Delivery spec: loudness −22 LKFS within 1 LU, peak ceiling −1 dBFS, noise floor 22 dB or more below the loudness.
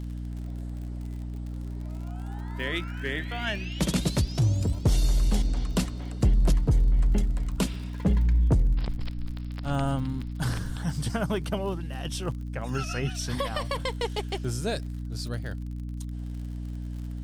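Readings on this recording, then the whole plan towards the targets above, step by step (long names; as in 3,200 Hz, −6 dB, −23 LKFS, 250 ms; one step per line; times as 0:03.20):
crackle rate 51 per second; mains hum 60 Hz; hum harmonics up to 300 Hz; level of the hum −32 dBFS; integrated loudness −29.5 LKFS; sample peak −14.0 dBFS; target loudness −22.0 LKFS
→ click removal
mains-hum notches 60/120/180/240/300 Hz
level +7.5 dB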